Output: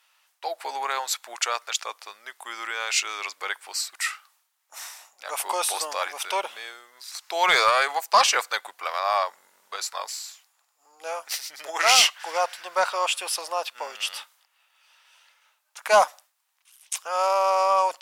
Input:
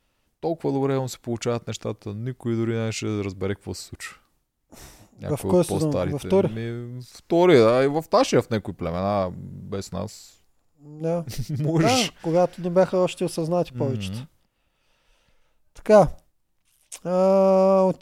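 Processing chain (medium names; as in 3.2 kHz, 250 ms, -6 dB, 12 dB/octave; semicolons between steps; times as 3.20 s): high-pass 910 Hz 24 dB/octave; 6.40–7.44 s: dynamic bell 1.8 kHz, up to -6 dB, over -52 dBFS, Q 0.99; in parallel at -6 dB: sine folder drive 5 dB, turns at -11.5 dBFS; on the sum: trim +1.5 dB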